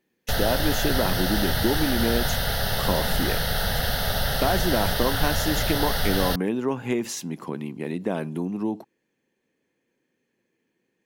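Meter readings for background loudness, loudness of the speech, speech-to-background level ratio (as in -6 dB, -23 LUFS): -25.5 LUFS, -28.0 LUFS, -2.5 dB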